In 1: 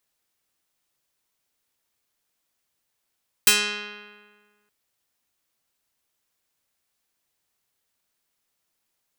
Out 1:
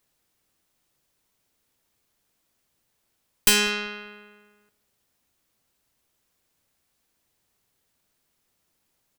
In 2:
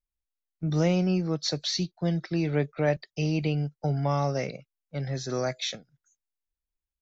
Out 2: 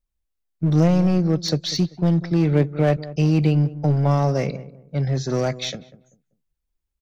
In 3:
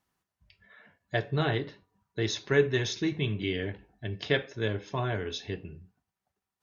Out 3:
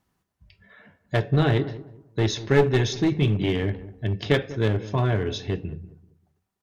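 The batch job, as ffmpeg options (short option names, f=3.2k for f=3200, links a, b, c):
-filter_complex "[0:a]aeval=exprs='0.668*(cos(1*acos(clip(val(0)/0.668,-1,1)))-cos(1*PI/2))+0.0168*(cos(6*acos(clip(val(0)/0.668,-1,1)))-cos(6*PI/2))':c=same,lowshelf=f=490:g=8,aeval=exprs='clip(val(0),-1,0.0891)':c=same,asplit=2[a][b];[b]adelay=194,lowpass=f=860:p=1,volume=-15dB,asplit=2[c][d];[d]adelay=194,lowpass=f=860:p=1,volume=0.3,asplit=2[e][f];[f]adelay=194,lowpass=f=860:p=1,volume=0.3[g];[a][c][e][g]amix=inputs=4:normalize=0,volume=3dB"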